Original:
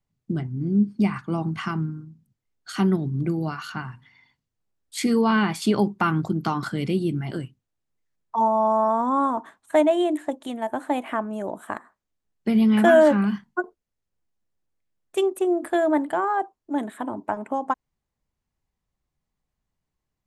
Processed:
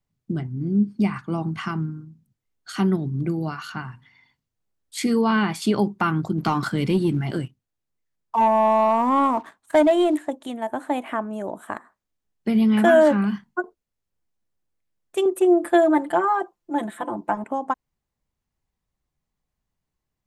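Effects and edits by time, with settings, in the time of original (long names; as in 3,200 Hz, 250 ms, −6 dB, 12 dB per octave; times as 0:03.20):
0:06.38–0:10.19: leveller curve on the samples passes 1
0:15.25–0:17.44: comb filter 5.8 ms, depth 100%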